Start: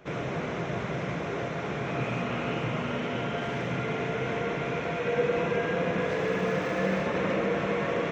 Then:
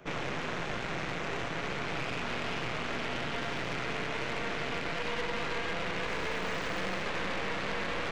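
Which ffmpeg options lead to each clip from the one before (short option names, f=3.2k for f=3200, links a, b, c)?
-filter_complex "[0:a]aeval=exprs='0.188*(cos(1*acos(clip(val(0)/0.188,-1,1)))-cos(1*PI/2))+0.0668*(cos(6*acos(clip(val(0)/0.188,-1,1)))-cos(6*PI/2))':c=same,acrossover=split=520|1300[a][b][c];[a]acompressor=threshold=-32dB:ratio=4[d];[b]acompressor=threshold=-39dB:ratio=4[e];[c]acompressor=threshold=-33dB:ratio=4[f];[d][e][f]amix=inputs=3:normalize=0,asoftclip=type=tanh:threshold=-26.5dB"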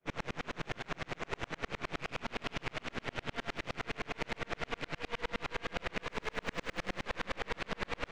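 -af "aeval=exprs='val(0)*pow(10,-40*if(lt(mod(-9.7*n/s,1),2*abs(-9.7)/1000),1-mod(-9.7*n/s,1)/(2*abs(-9.7)/1000),(mod(-9.7*n/s,1)-2*abs(-9.7)/1000)/(1-2*abs(-9.7)/1000))/20)':c=same,volume=4dB"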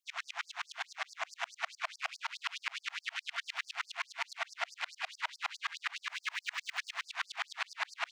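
-filter_complex "[0:a]asplit=2[a][b];[b]alimiter=level_in=6dB:limit=-24dB:level=0:latency=1,volume=-6dB,volume=0.5dB[c];[a][c]amix=inputs=2:normalize=0,afftfilt=real='re*gte(b*sr/1024,610*pow(4600/610,0.5+0.5*sin(2*PI*4.7*pts/sr)))':imag='im*gte(b*sr/1024,610*pow(4600/610,0.5+0.5*sin(2*PI*4.7*pts/sr)))':win_size=1024:overlap=0.75"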